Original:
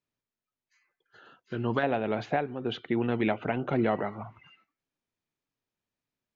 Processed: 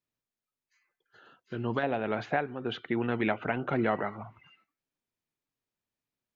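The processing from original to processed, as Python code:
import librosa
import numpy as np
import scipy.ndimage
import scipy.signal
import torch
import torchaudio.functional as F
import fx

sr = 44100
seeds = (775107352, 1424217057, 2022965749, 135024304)

y = fx.peak_eq(x, sr, hz=1500.0, db=6.0, octaves=1.2, at=(1.99, 4.17))
y = y * librosa.db_to_amplitude(-2.5)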